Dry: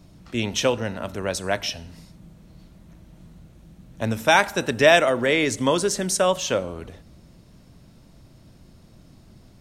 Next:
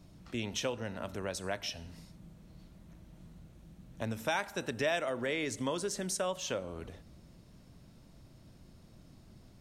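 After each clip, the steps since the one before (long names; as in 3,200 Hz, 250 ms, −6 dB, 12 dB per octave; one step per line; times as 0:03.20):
downward compressor 2 to 1, threshold −30 dBFS, peak gain reduction 11 dB
level −6.5 dB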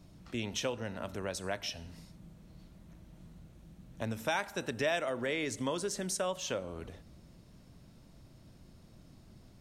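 no processing that can be heard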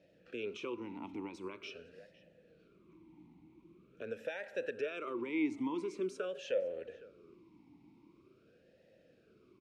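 brickwall limiter −27 dBFS, peak gain reduction 8.5 dB
slap from a distant wall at 87 metres, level −19 dB
formant filter swept between two vowels e-u 0.45 Hz
level +9.5 dB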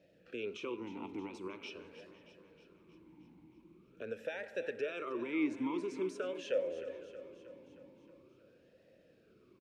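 repeating echo 314 ms, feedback 60%, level −13 dB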